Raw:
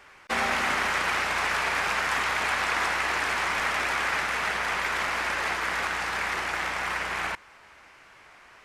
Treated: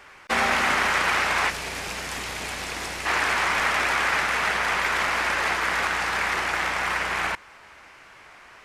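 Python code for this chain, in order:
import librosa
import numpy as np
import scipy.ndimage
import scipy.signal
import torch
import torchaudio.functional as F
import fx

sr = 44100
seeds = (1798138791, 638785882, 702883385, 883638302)

y = fx.peak_eq(x, sr, hz=1300.0, db=-14.0, octaves=2.3, at=(1.49, 3.05), fade=0.02)
y = y * 10.0 ** (4.0 / 20.0)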